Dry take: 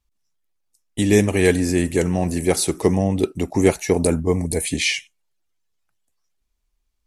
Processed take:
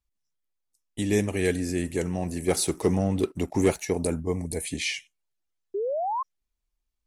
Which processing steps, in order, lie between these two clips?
1.35–1.84 bell 940 Hz -8.5 dB 0.4 oct; 2.48–3.85 sample leveller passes 1; 5.74–6.23 painted sound rise 380–1100 Hz -19 dBFS; gain -8.5 dB

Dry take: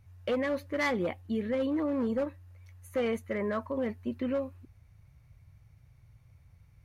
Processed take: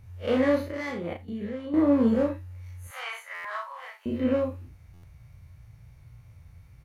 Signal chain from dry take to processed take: time blur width 89 ms; 0.68–1.74 level quantiser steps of 14 dB; 2.87–4.06 steep high-pass 840 Hz 36 dB/oct; doubler 35 ms -3.5 dB; stuck buffer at 3.34/4.93, samples 512, times 8; gain +7.5 dB

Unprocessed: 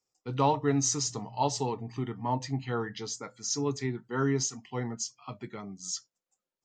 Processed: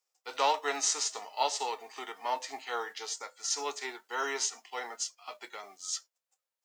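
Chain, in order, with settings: spectral whitening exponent 0.6; HPF 480 Hz 24 dB/oct

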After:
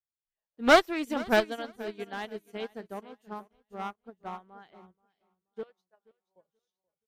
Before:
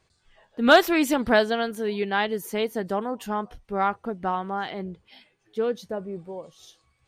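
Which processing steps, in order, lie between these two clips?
5.63–6.36 HPF 850 Hz 12 dB/oct; in parallel at 0 dB: level quantiser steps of 9 dB; on the sum: one-sided clip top -16.5 dBFS, bottom -3 dBFS; feedback echo 0.48 s, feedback 45%, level -10 dB; upward expander 2.5:1, over -38 dBFS; gain -3 dB

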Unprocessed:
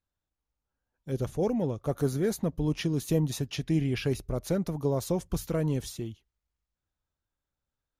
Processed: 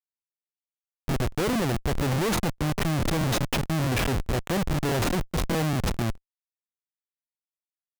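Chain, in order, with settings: Schmitt trigger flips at -34 dBFS; crackling interface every 0.21 s, samples 1024, repeat, from 0.46; gain +7 dB

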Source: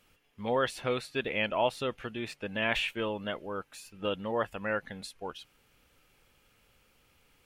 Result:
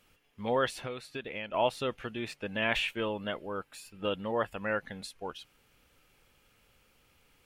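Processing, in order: 0.76–1.54 compressor 4:1, threshold -37 dBFS, peak gain reduction 10.5 dB; 2.98–4.57 notch 6100 Hz, Q 8.6

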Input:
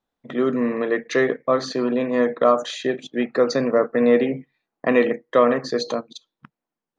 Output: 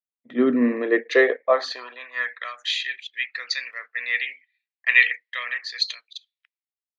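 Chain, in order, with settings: high-pass sweep 240 Hz -> 2100 Hz, 0.62–2.54; band shelf 2800 Hz +9 dB; three-band expander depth 70%; gain -6.5 dB

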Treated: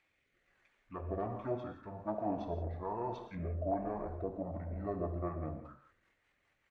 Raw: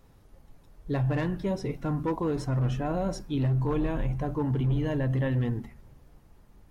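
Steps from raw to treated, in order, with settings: low shelf 150 Hz +7 dB; narrowing echo 0.119 s, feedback 62%, band-pass 820 Hz, level -15 dB; pitch shift -7.5 st; rotary speaker horn 1.2 Hz, later 5 Hz, at 4.15; auto-wah 660–2200 Hz, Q 4, down, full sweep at -22 dBFS; non-linear reverb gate 0.2 s flat, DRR 6.5 dB; gain +9.5 dB

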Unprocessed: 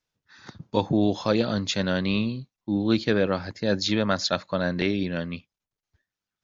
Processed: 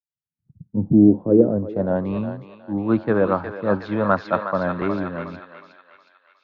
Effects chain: low-pass sweep 150 Hz -> 1100 Hz, 0.47–2.23; on a send: thinning echo 0.364 s, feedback 78%, high-pass 790 Hz, level -4 dB; on the sum: three-band expander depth 70%; gain +2 dB

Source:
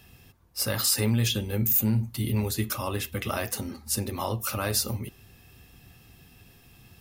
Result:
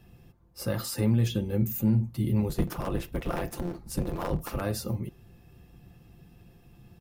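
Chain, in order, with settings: 2.48–4.62 cycle switcher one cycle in 3, inverted; tilt shelf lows +7.5 dB, about 1200 Hz; comb 5.8 ms, depth 38%; gain -5.5 dB

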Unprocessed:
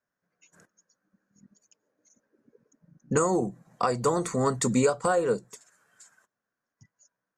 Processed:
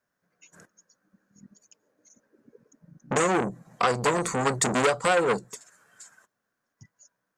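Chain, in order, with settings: core saturation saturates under 1800 Hz; gain +5.5 dB

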